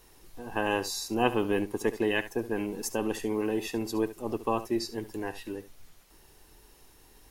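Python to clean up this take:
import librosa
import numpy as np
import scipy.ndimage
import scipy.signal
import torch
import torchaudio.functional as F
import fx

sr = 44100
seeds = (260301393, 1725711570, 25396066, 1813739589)

y = fx.fix_echo_inverse(x, sr, delay_ms=70, level_db=-14.5)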